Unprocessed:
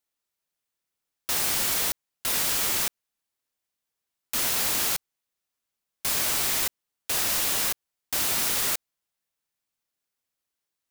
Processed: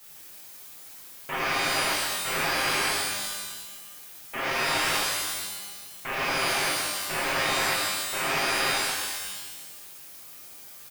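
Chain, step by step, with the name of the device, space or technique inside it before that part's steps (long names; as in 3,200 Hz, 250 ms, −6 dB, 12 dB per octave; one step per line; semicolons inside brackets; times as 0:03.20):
army field radio (band-pass filter 390–3,000 Hz; variable-slope delta modulation 16 kbit/s; white noise bed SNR 18 dB)
high-shelf EQ 9,300 Hz +7.5 dB
comb filter 7.5 ms, depth 78%
reverb with rising layers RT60 1.3 s, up +12 semitones, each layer −2 dB, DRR −4.5 dB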